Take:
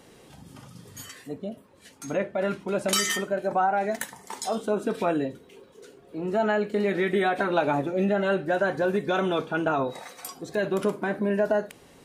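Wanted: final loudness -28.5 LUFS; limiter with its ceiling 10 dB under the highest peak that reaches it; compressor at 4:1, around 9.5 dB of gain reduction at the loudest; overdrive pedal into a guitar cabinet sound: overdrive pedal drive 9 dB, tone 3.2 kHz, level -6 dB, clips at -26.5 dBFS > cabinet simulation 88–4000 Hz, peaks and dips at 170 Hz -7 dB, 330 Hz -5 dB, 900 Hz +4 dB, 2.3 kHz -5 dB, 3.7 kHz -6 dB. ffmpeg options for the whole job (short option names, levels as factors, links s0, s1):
-filter_complex "[0:a]acompressor=threshold=0.0282:ratio=4,alimiter=level_in=1.33:limit=0.0631:level=0:latency=1,volume=0.75,asplit=2[s0][s1];[s1]highpass=f=720:p=1,volume=2.82,asoftclip=type=tanh:threshold=0.0473[s2];[s0][s2]amix=inputs=2:normalize=0,lowpass=f=3200:p=1,volume=0.501,highpass=88,equalizer=f=170:t=q:w=4:g=-7,equalizer=f=330:t=q:w=4:g=-5,equalizer=f=900:t=q:w=4:g=4,equalizer=f=2300:t=q:w=4:g=-5,equalizer=f=3700:t=q:w=4:g=-6,lowpass=f=4000:w=0.5412,lowpass=f=4000:w=1.3066,volume=2.82"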